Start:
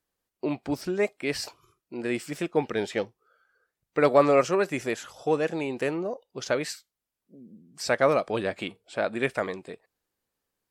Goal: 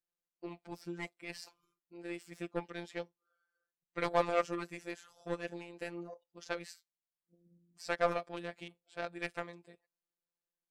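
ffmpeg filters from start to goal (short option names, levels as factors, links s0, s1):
-af "aeval=exprs='0.531*(cos(1*acos(clip(val(0)/0.531,-1,1)))-cos(1*PI/2))+0.0237*(cos(3*acos(clip(val(0)/0.531,-1,1)))-cos(3*PI/2))+0.0376*(cos(7*acos(clip(val(0)/0.531,-1,1)))-cos(7*PI/2))':c=same,afftfilt=real='hypot(re,im)*cos(PI*b)':imag='0':win_size=1024:overlap=0.75,volume=0.631"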